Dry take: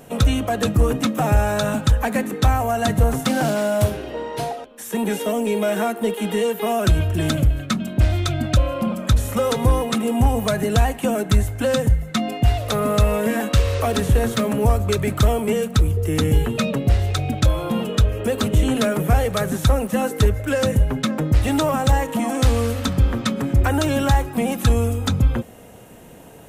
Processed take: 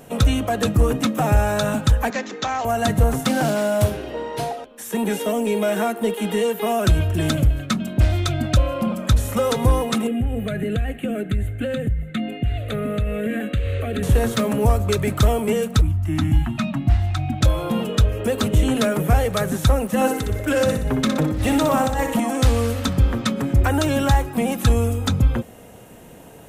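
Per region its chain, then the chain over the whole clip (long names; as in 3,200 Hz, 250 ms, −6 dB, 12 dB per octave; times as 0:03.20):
0:02.10–0:02.65: high-pass filter 210 Hz + low-shelf EQ 410 Hz −8.5 dB + bad sample-rate conversion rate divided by 3×, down none, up filtered
0:10.07–0:14.03: high-shelf EQ 5,800 Hz −12 dB + downward compressor 5 to 1, threshold −17 dBFS + phaser with its sweep stopped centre 2,300 Hz, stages 4
0:15.81–0:17.41: Chebyshev band-stop filter 330–660 Hz, order 3 + high-shelf EQ 3,500 Hz −11.5 dB
0:19.95–0:22.20: compressor whose output falls as the input rises −20 dBFS + repeating echo 61 ms, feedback 47%, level −7 dB
whole clip: no processing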